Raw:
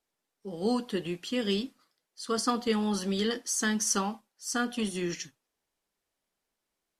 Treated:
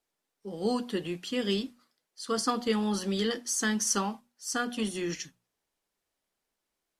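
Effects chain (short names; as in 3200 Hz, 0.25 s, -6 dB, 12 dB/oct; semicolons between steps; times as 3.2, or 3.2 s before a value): notches 60/120/180/240 Hz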